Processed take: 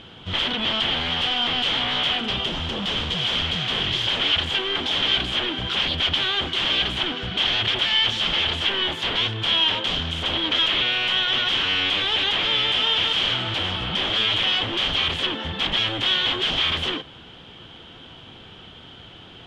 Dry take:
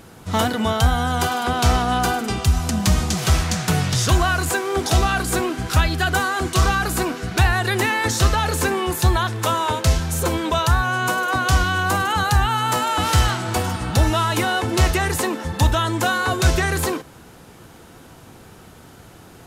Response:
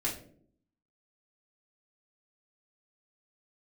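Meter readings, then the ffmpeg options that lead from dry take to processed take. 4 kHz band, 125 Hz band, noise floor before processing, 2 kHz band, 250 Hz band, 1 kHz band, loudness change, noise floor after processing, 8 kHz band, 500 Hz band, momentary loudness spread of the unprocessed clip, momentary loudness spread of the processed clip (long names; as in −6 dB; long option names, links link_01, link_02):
+9.5 dB, −14.0 dB, −45 dBFS, −2.5 dB, −8.5 dB, −9.5 dB, −1.0 dB, −44 dBFS, −17.5 dB, −8.0 dB, 4 LU, 6 LU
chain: -af "aeval=exprs='0.0794*(abs(mod(val(0)/0.0794+3,4)-2)-1)':channel_layout=same,lowpass=frequency=3200:width_type=q:width=11,volume=-2.5dB"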